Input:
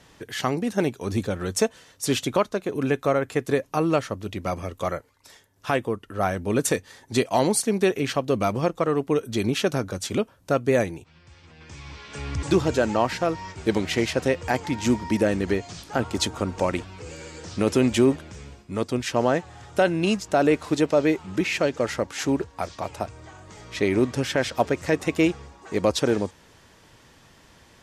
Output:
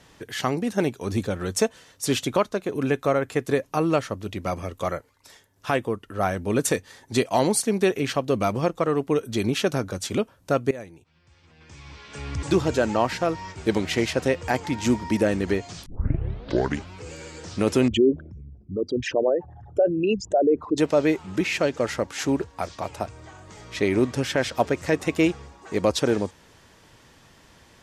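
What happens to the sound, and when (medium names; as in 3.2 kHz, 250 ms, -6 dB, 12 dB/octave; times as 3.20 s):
10.71–13.21 s: fade in equal-power, from -18.5 dB
15.86 s: tape start 1.08 s
17.88–20.78 s: resonances exaggerated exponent 3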